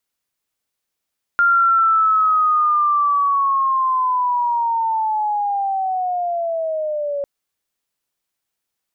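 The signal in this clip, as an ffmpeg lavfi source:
ffmpeg -f lavfi -i "aevalsrc='pow(10,(-11-9*t/5.85)/20)*sin(2*PI*(1400*t-840*t*t/(2*5.85)))':duration=5.85:sample_rate=44100" out.wav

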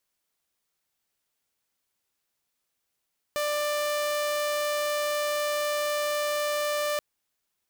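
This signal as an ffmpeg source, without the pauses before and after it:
ffmpeg -f lavfi -i "aevalsrc='0.0708*(2*mod(592*t,1)-1)':duration=3.63:sample_rate=44100" out.wav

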